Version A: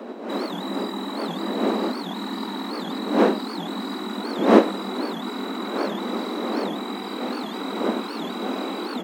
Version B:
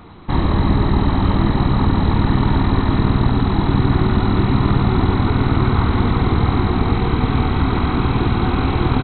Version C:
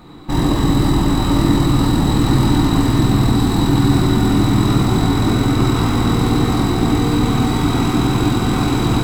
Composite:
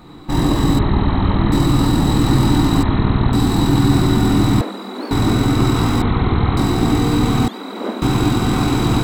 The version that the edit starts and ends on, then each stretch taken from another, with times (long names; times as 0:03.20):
C
0:00.79–0:01.52: punch in from B
0:02.83–0:03.33: punch in from B
0:04.61–0:05.11: punch in from A
0:06.02–0:06.57: punch in from B
0:07.48–0:08.02: punch in from A